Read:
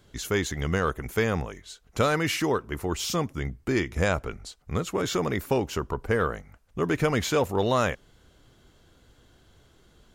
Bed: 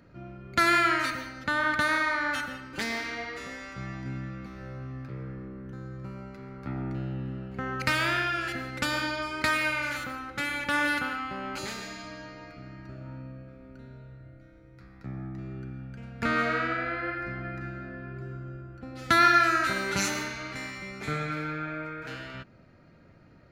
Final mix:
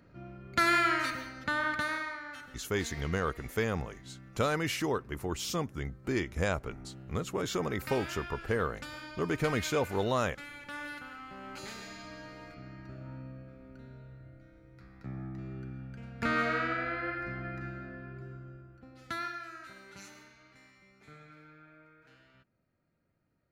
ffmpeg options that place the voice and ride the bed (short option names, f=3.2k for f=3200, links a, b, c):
-filter_complex "[0:a]adelay=2400,volume=-6dB[a];[1:a]volume=8.5dB,afade=t=out:st=1.5:d=0.73:silence=0.266073,afade=t=in:st=11.05:d=1.35:silence=0.251189,afade=t=out:st=17.66:d=1.71:silence=0.112202[b];[a][b]amix=inputs=2:normalize=0"